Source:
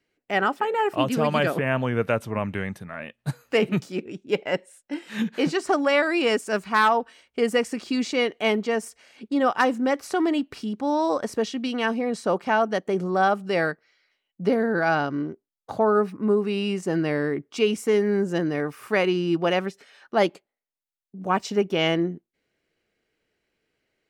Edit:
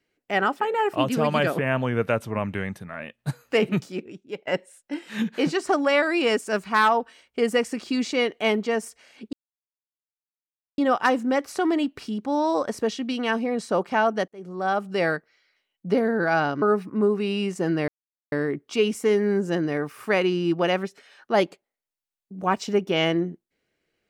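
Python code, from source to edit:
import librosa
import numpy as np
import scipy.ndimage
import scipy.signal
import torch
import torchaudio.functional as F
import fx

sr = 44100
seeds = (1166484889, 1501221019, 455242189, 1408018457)

y = fx.edit(x, sr, fx.fade_out_to(start_s=3.79, length_s=0.68, floor_db=-16.5),
    fx.insert_silence(at_s=9.33, length_s=1.45),
    fx.fade_in_span(start_s=12.83, length_s=0.66),
    fx.cut(start_s=15.17, length_s=0.72),
    fx.insert_silence(at_s=17.15, length_s=0.44), tone=tone)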